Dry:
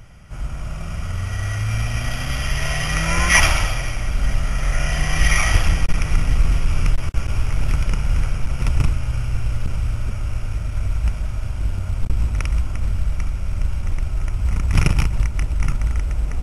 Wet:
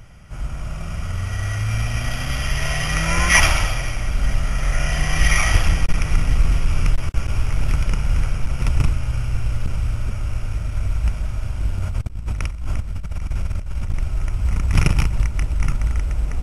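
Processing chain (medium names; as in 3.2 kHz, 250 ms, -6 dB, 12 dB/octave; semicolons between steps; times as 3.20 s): 11.82–13.94 s: compressor with a negative ratio -22 dBFS, ratio -0.5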